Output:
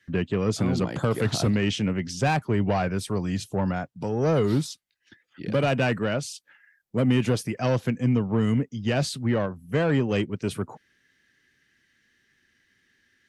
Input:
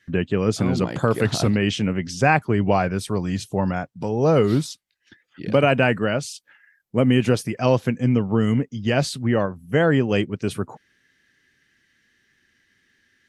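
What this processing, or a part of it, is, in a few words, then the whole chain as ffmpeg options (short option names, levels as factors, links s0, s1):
one-band saturation: -filter_complex "[0:a]acrossover=split=210|3700[s0][s1][s2];[s1]asoftclip=type=tanh:threshold=0.141[s3];[s0][s3][s2]amix=inputs=3:normalize=0,volume=0.75"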